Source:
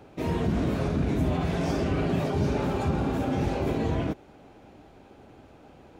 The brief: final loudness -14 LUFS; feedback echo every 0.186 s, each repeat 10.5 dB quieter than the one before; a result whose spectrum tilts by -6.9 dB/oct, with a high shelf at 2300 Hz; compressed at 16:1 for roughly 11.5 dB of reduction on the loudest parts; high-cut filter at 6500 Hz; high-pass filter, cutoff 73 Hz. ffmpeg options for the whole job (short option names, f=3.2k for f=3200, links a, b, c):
-af "highpass=73,lowpass=6.5k,highshelf=f=2.3k:g=-8.5,acompressor=threshold=-33dB:ratio=16,aecho=1:1:186|372|558:0.299|0.0896|0.0269,volume=24dB"